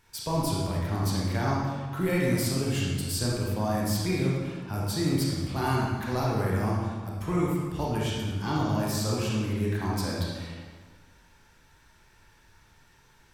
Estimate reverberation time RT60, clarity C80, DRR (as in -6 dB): 1.5 s, 1.5 dB, -5.0 dB